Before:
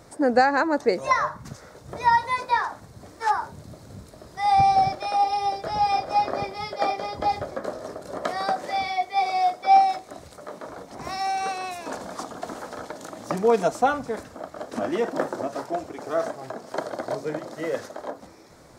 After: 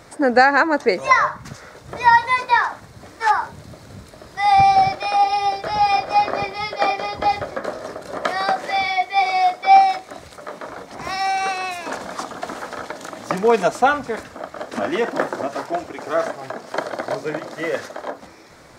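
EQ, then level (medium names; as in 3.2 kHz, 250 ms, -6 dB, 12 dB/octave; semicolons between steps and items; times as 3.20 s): peaking EQ 2.2 kHz +7.5 dB 2.1 oct; +2.5 dB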